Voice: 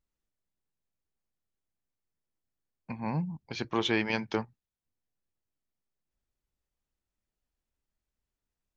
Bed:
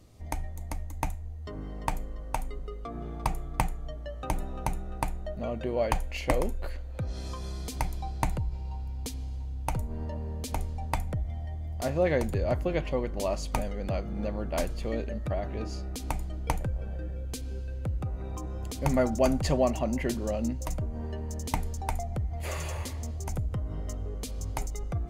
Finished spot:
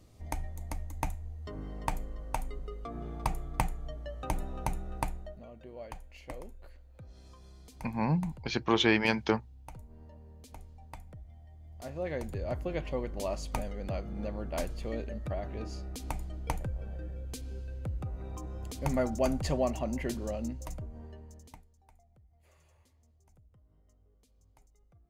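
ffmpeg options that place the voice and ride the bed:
-filter_complex "[0:a]adelay=4950,volume=3dB[a];[1:a]volume=10dB,afade=t=out:st=5.03:d=0.42:silence=0.188365,afade=t=in:st=11.52:d=1.46:silence=0.237137,afade=t=out:st=20.22:d=1.44:silence=0.0473151[b];[a][b]amix=inputs=2:normalize=0"

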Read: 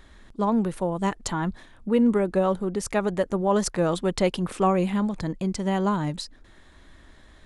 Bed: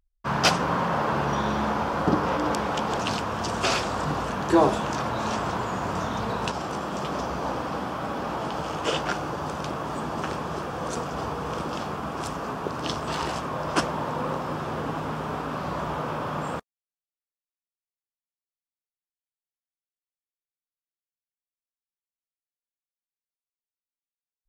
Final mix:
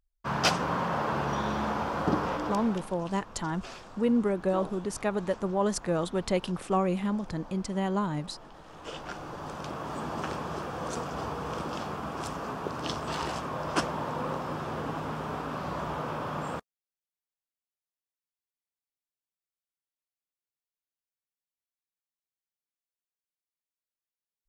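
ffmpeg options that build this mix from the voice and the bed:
-filter_complex "[0:a]adelay=2100,volume=-5dB[a];[1:a]volume=12dB,afade=t=out:st=2.2:d=0.72:silence=0.158489,afade=t=in:st=8.66:d=1.43:silence=0.149624[b];[a][b]amix=inputs=2:normalize=0"

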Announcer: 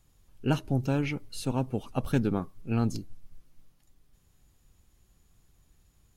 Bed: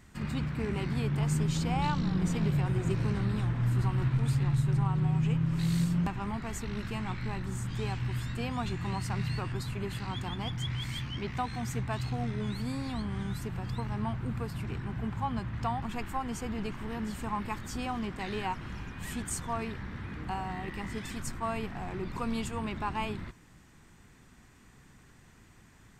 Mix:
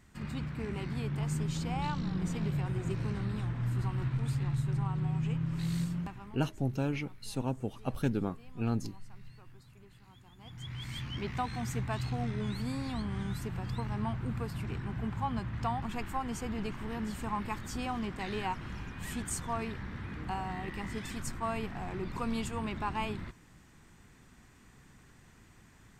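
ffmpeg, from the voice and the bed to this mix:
-filter_complex "[0:a]adelay=5900,volume=-4.5dB[a];[1:a]volume=16.5dB,afade=t=out:st=5.79:d=0.64:silence=0.133352,afade=t=in:st=10.37:d=0.83:silence=0.0891251[b];[a][b]amix=inputs=2:normalize=0"

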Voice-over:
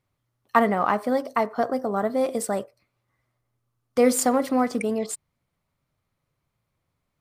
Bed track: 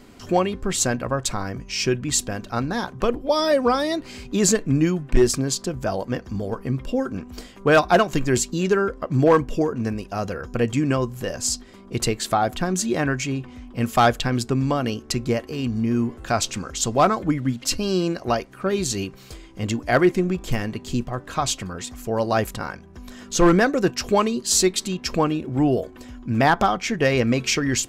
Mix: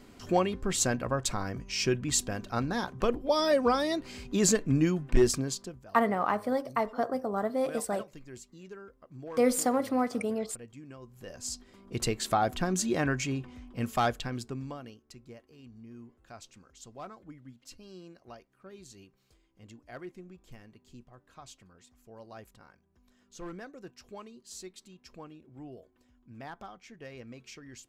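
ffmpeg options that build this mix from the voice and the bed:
-filter_complex "[0:a]adelay=5400,volume=-6dB[a];[1:a]volume=14.5dB,afade=t=out:st=5.28:d=0.57:silence=0.0944061,afade=t=in:st=11:d=1.29:silence=0.0944061,afade=t=out:st=13.24:d=1.75:silence=0.0944061[b];[a][b]amix=inputs=2:normalize=0"

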